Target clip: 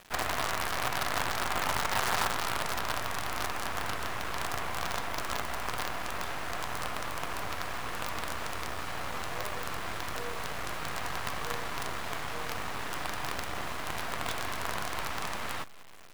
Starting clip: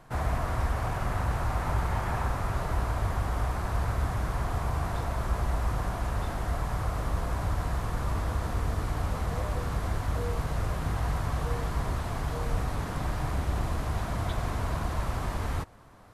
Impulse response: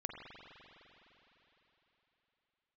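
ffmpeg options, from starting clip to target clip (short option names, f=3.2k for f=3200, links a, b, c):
-filter_complex "[0:a]highpass=f=380:p=1,equalizer=f=2.2k:t=o:w=2.5:g=8.5,acrusher=bits=5:dc=4:mix=0:aa=0.000001,asplit=2[a][b];[1:a]atrim=start_sample=2205[c];[b][c]afir=irnorm=-1:irlink=0,volume=-18dB[d];[a][d]amix=inputs=2:normalize=0"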